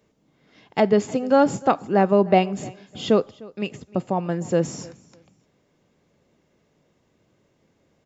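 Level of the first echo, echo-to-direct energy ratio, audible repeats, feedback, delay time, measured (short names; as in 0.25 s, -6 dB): -22.5 dB, -22.5 dB, 1, no steady repeat, 0.303 s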